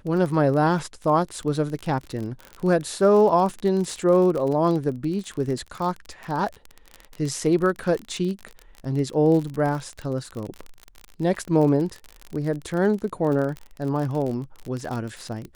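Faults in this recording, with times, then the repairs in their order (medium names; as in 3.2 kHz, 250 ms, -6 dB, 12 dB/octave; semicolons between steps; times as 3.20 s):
crackle 36 per s -28 dBFS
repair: de-click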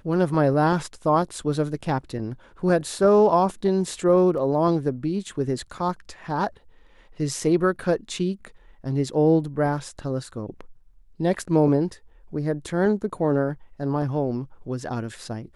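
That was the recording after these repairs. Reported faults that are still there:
nothing left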